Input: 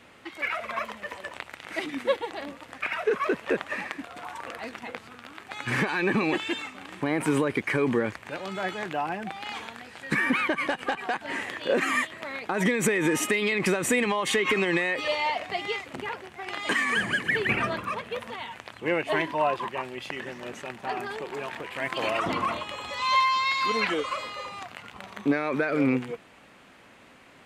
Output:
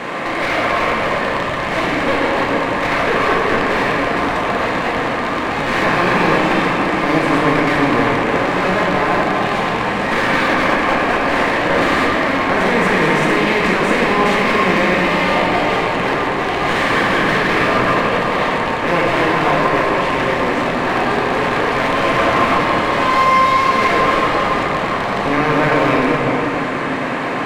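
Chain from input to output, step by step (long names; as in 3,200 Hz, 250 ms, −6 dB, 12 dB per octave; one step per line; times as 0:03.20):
compressor on every frequency bin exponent 0.4
parametric band 350 Hz −11.5 dB 2.3 octaves
in parallel at +1 dB: brickwall limiter −13 dBFS, peak gain reduction 10.5 dB
on the sum: resonant band-pass 470 Hz, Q 0.7
asymmetric clip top −27.5 dBFS
rectangular room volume 200 cubic metres, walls hard, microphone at 0.77 metres
level +4.5 dB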